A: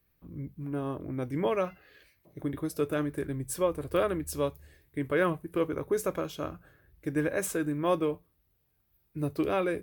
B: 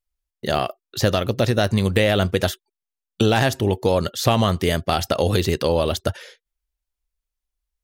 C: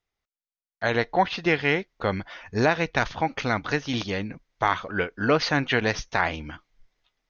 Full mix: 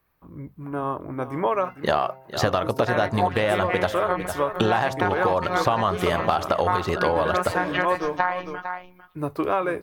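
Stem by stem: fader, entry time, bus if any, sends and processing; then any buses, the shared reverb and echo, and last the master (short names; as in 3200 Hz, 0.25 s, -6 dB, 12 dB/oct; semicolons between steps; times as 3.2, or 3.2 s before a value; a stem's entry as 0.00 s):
0.0 dB, 0.00 s, no send, echo send -12 dB, dry
-1.5 dB, 1.40 s, no send, echo send -15.5 dB, high shelf 6600 Hz -7.5 dB; de-hum 132.1 Hz, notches 7
-1.0 dB, 2.05 s, no send, echo send -14.5 dB, high shelf 5200 Hz -12 dB; robotiser 181 Hz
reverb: off
echo: echo 0.452 s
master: bell 1000 Hz +15 dB 1.6 oct; compressor, threshold -18 dBFS, peak gain reduction 12 dB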